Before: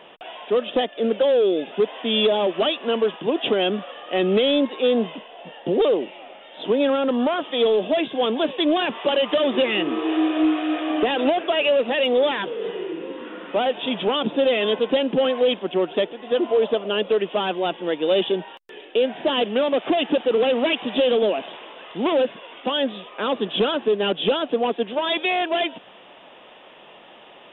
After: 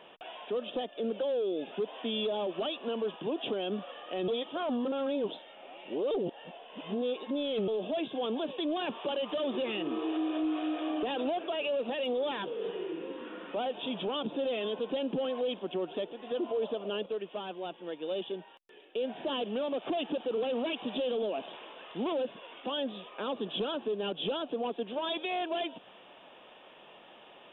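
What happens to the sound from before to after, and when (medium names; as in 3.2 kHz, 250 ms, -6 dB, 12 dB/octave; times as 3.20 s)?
4.28–7.68 s: reverse
17.06–18.96 s: gain -7.5 dB
whole clip: band-stop 2 kHz, Q 15; dynamic bell 1.9 kHz, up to -6 dB, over -40 dBFS, Q 1.3; peak limiter -18 dBFS; trim -7.5 dB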